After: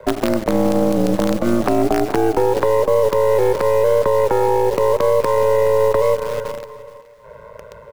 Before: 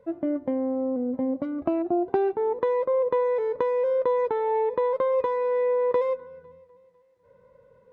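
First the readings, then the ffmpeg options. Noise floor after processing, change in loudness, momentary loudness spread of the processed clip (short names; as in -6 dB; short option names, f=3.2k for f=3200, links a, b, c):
-40 dBFS, +8.5 dB, 5 LU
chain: -filter_complex "[0:a]highpass=f=57:w=0.5412,highpass=f=57:w=1.3066,acrossover=split=340|920[a][b][c];[a]acompressor=threshold=-34dB:ratio=4[d];[b]acompressor=threshold=-37dB:ratio=4[e];[c]acompressor=threshold=-48dB:ratio=4[f];[d][e][f]amix=inputs=3:normalize=0,aeval=exprs='val(0)*sin(2*PI*56*n/s)':c=same,acrossover=split=170|510[g][h][i];[h]acrusher=bits=6:dc=4:mix=0:aa=0.000001[j];[g][j][i]amix=inputs=3:normalize=0,acontrast=76,asplit=2[k][l];[l]aecho=0:1:422|844:0.126|0.0327[m];[k][m]amix=inputs=2:normalize=0,alimiter=level_in=23.5dB:limit=-1dB:release=50:level=0:latency=1,volume=-5dB"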